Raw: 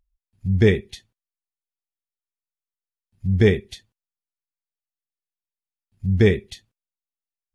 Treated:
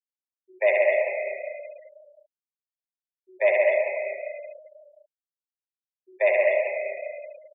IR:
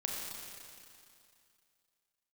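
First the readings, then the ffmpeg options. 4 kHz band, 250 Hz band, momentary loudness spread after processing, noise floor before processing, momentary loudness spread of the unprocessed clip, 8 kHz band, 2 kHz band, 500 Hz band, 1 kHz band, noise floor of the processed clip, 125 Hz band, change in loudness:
under -15 dB, under -25 dB, 19 LU, under -85 dBFS, 13 LU, no reading, +4.5 dB, +2.5 dB, +13.5 dB, under -85 dBFS, under -40 dB, -3.5 dB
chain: -filter_complex "[0:a]aecho=1:1:72.89|262.4:0.708|0.355,highpass=f=420:t=q:w=0.5412,highpass=f=420:t=q:w=1.307,lowpass=f=2600:t=q:w=0.5176,lowpass=f=2600:t=q:w=0.7071,lowpass=f=2600:t=q:w=1.932,afreqshift=180,asplit=2[s0][s1];[1:a]atrim=start_sample=2205,highshelf=f=5300:g=-4,adelay=136[s2];[s1][s2]afir=irnorm=-1:irlink=0,volume=0.794[s3];[s0][s3]amix=inputs=2:normalize=0,afftfilt=real='re*gte(hypot(re,im),0.0251)':imag='im*gte(hypot(re,im),0.0251)':win_size=1024:overlap=0.75"

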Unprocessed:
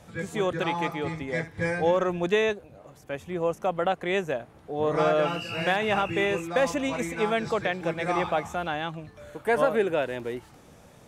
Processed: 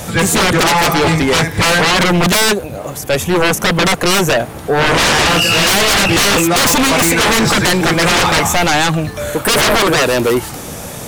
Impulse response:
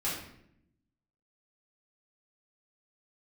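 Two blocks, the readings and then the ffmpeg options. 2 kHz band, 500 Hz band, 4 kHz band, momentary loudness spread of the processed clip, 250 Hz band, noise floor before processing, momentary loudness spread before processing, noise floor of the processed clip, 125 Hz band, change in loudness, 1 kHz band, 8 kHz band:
+17.5 dB, +10.0 dB, +24.0 dB, 8 LU, +16.0 dB, -53 dBFS, 11 LU, -28 dBFS, +18.0 dB, +15.5 dB, +14.5 dB, +30.5 dB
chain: -af "aemphasis=mode=production:type=50kf,aeval=exprs='0.376*sin(PI/2*10*val(0)/0.376)':c=same"

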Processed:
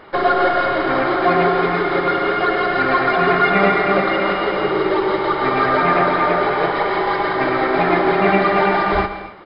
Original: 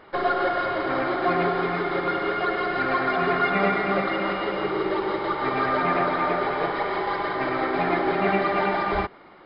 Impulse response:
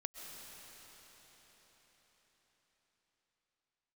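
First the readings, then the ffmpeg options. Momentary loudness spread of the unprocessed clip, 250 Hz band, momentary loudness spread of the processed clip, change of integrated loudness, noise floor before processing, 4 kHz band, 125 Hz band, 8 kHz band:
4 LU, +7.0 dB, 4 LU, +7.5 dB, -48 dBFS, +7.5 dB, +7.0 dB, no reading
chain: -filter_complex "[0:a]asplit=2[s0][s1];[s1]adelay=139.9,volume=0.158,highshelf=f=4000:g=-3.15[s2];[s0][s2]amix=inputs=2:normalize=0,asplit=2[s3][s4];[1:a]atrim=start_sample=2205,afade=t=out:st=0.34:d=0.01,atrim=end_sample=15435[s5];[s4][s5]afir=irnorm=-1:irlink=0,volume=1.26[s6];[s3][s6]amix=inputs=2:normalize=0,volume=1.26"

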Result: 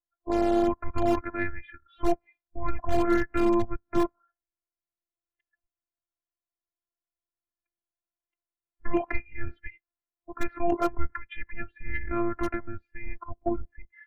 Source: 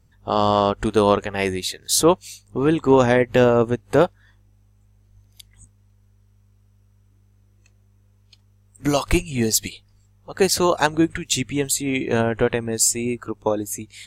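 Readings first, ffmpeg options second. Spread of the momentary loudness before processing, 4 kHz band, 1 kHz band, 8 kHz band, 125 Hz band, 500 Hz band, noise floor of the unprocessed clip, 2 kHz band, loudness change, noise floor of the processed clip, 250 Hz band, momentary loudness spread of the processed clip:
9 LU, -22.5 dB, -8.5 dB, under -30 dB, -13.0 dB, -11.5 dB, -57 dBFS, -9.5 dB, -9.0 dB, under -85 dBFS, -7.0 dB, 18 LU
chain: -filter_complex "[0:a]highpass=f=230:t=q:w=0.5412,highpass=f=230:t=q:w=1.307,lowpass=f=2400:t=q:w=0.5176,lowpass=f=2400:t=q:w=0.7071,lowpass=f=2400:t=q:w=1.932,afreqshift=-290,asplit=2[s0][s1];[s1]aeval=exprs='(mod(2.66*val(0)+1,2)-1)/2.66':c=same,volume=0.251[s2];[s0][s2]amix=inputs=2:normalize=0,afftdn=nr=23:nf=-43,adynamicequalizer=threshold=0.0141:dfrequency=150:dqfactor=5.9:tfrequency=150:tqfactor=5.9:attack=5:release=100:ratio=0.375:range=2:mode=boostabove:tftype=bell,afftfilt=real='hypot(re,im)*cos(PI*b)':imag='0':win_size=512:overlap=0.75,acontrast=47,volume=0.398"

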